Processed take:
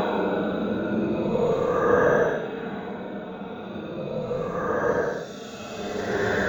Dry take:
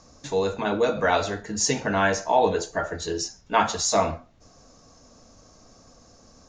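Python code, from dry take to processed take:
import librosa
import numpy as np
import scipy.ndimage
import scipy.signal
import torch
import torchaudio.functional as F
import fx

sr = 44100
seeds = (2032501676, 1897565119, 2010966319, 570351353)

p1 = fx.gate_flip(x, sr, shuts_db=-13.0, range_db=-31)
p2 = fx.hum_notches(p1, sr, base_hz=50, count=9)
p3 = p2 + fx.echo_feedback(p2, sr, ms=188, feedback_pct=23, wet_db=-6, dry=0)
p4 = fx.paulstretch(p3, sr, seeds[0], factor=15.0, window_s=0.05, from_s=0.9)
p5 = fx.rider(p4, sr, range_db=4, speed_s=0.5)
p6 = p4 + (p5 * 10.0 ** (0.5 / 20.0))
p7 = np.interp(np.arange(len(p6)), np.arange(len(p6))[::2], p6[::2])
y = p7 * 10.0 ** (-1.0 / 20.0)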